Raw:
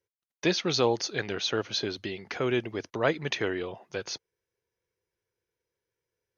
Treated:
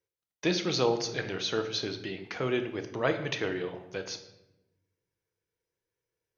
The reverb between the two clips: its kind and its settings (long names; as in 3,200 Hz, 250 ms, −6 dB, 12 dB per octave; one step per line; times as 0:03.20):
rectangular room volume 340 cubic metres, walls mixed, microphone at 0.58 metres
level −3 dB